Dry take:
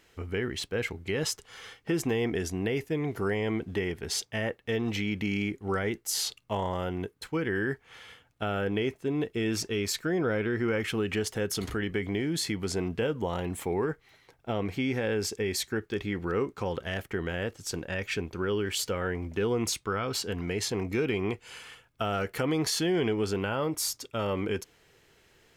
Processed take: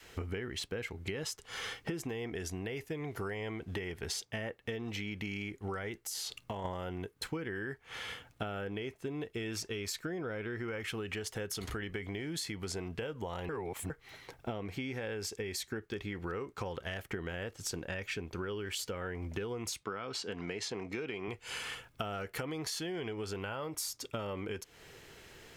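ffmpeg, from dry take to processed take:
-filter_complex "[0:a]asplit=3[a][b][c];[a]afade=t=out:st=6.03:d=0.02[d];[b]acompressor=threshold=-39dB:ratio=6:attack=3.2:release=140:knee=1:detection=peak,afade=t=in:st=6.03:d=0.02,afade=t=out:st=6.64:d=0.02[e];[c]afade=t=in:st=6.64:d=0.02[f];[d][e][f]amix=inputs=3:normalize=0,asettb=1/sr,asplit=3[g][h][i];[g]atrim=end=19.834[j];[h]atrim=start=19.83:end=21.28,asetpts=PTS-STARTPTS,afade=t=in:d=0.004:c=qsin,afade=t=out:st=1.446:d=0.004:c=qsin,highpass=160,lowpass=6.8k[k];[i]atrim=start=21.276[l];[j][k]acrossfade=d=0.004:c1=hsin:c2=qsin[m];[m][l]acrossfade=d=0.004:c1=qsin:c2=hsin,asplit=3[n][o][p];[n]atrim=end=13.492[q];[o]atrim=start=13.488:end=13.902,asetpts=PTS-STARTPTS,areverse[r];[p]atrim=start=13.898[s];[q][r]acrossfade=d=0.004:c1=hsin:c2=hsin[t];[t][s]acrossfade=d=0.004:c1=hsin:c2=hsin,adynamicequalizer=threshold=0.00794:dfrequency=240:dqfactor=0.77:tfrequency=240:tqfactor=0.77:attack=5:release=100:ratio=0.375:range=3.5:mode=cutabove:tftype=bell,acompressor=threshold=-43dB:ratio=12,volume=7.5dB"

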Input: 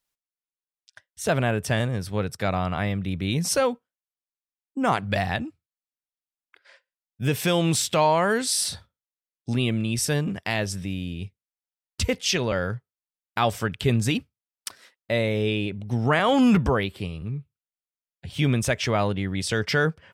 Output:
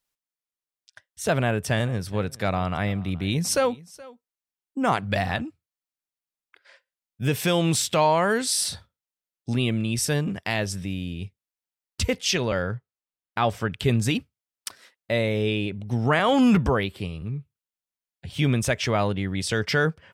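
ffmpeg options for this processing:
-filter_complex "[0:a]asettb=1/sr,asplit=3[a][b][c];[a]atrim=end=1.354[d];[b]atrim=start=1.35:end=5.43,asetpts=PTS-STARTPTS,afade=t=in:d=0.004:c=qsin,afade=t=out:st=4.076:d=0.004:c=qsin,aecho=1:1:423:0.0841,atrim=end_sample=179928[e];[c]atrim=start=5.426[f];[d][e]acrossfade=d=0.004:c1=hsin:c2=qsin[g];[g][f]acrossfade=d=0.004:c1=qsin:c2=hsin,asettb=1/sr,asplit=3[h][i][j];[h]atrim=end=12.624[k];[i]atrim=start=12.62:end=13.74,asetpts=PTS-STARTPTS,afade=t=in:d=0.004:c=qsin,afade=t=out:st=1.116:d=0.004:c=qsin,highshelf=f=4.7k:g=-10.5[l];[j]atrim=start=13.736[m];[k][l]acrossfade=d=0.004:c1=hsin:c2=qsin[n];[n][m]acrossfade=d=0.004:c1=qsin:c2=hsin"

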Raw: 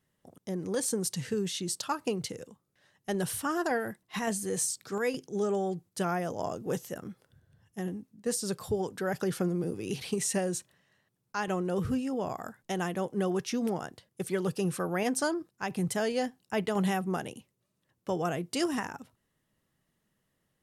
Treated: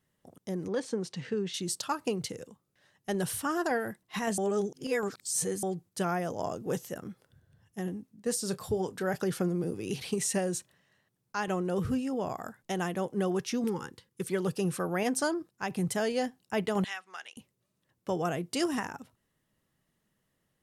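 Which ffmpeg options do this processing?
-filter_complex "[0:a]asettb=1/sr,asplit=3[a][b][c];[a]atrim=end=0.684[d];[b]atrim=start=0.68:end=1.54,asetpts=PTS-STARTPTS,afade=t=in:d=0.004:c=qsin,afade=t=out:st=0.856:d=0.004:c=qsin,highpass=170,lowpass=3.5k[e];[c]atrim=start=1.536[f];[d][e]acrossfade=d=0.004:c1=hsin:c2=qsin[g];[g][f]acrossfade=d=0.004:c1=qsin:c2=hsin,asettb=1/sr,asplit=3[h][i][j];[h]atrim=end=8.374[k];[i]atrim=start=8.37:end=9.16,asetpts=PTS-STARTPTS,afade=t=in:d=0.004:c=qsin,afade=t=out:st=0.786:d=0.004:c=qsin,asplit=2[l][m];[m]adelay=27,volume=-13.5dB[n];[l][n]amix=inputs=2:normalize=0,atrim=end_sample=34839[o];[j]atrim=start=9.156[p];[k][o]acrossfade=d=0.004:c1=hsin:c2=qsin[q];[q][p]acrossfade=d=0.004:c1=qsin:c2=hsin,asettb=1/sr,asplit=3[r][s][t];[r]atrim=end=13.644[u];[s]atrim=start=13.64:end=14.3,asetpts=PTS-STARTPTS,afade=t=in:d=0.004:c=qsin,afade=t=out:st=0.656:d=0.004:c=qsin,asuperstop=centerf=660:order=12:qfactor=2.3[v];[t]atrim=start=14.296[w];[u][v]acrossfade=d=0.004:c1=hsin:c2=qsin[x];[x][w]acrossfade=d=0.004:c1=qsin:c2=hsin,asettb=1/sr,asplit=3[y][z][aa];[y]atrim=end=16.844[ab];[z]atrim=start=16.84:end=17.37,asetpts=PTS-STARTPTS,afade=t=in:d=0.004:c=qsin,afade=t=out:st=0.526:d=0.004:c=qsin,asuperpass=centerf=3000:order=4:qfactor=0.63[ac];[aa]atrim=start=17.366[ad];[ab][ac]acrossfade=d=0.004:c1=hsin:c2=qsin[ae];[ae][ad]acrossfade=d=0.004:c1=qsin:c2=hsin,asplit=3[af][ag][ah];[af]atrim=end=4.382[ai];[ag]atrim=start=4.378:end=5.632,asetpts=PTS-STARTPTS,areverse[aj];[ah]atrim=start=5.628[ak];[ai][aj]acrossfade=d=0.004:c1=hsin:c2=hsin[al];[al][ak]acrossfade=d=0.004:c1=hsin:c2=hsin"

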